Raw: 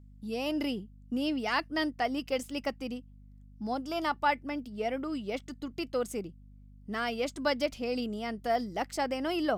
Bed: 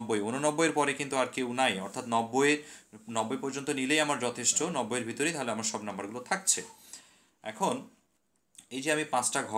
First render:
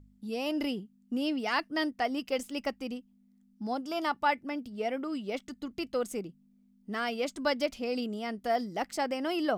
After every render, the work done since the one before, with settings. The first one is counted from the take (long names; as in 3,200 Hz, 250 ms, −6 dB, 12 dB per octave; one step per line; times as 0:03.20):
hum removal 50 Hz, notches 3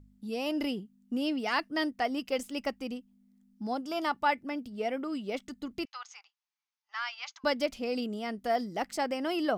0:05.85–0:07.44: Chebyshev band-pass filter 820–6,500 Hz, order 5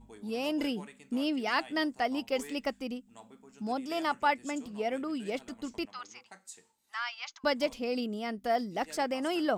mix in bed −22 dB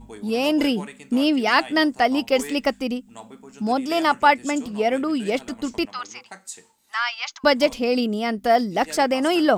level +11.5 dB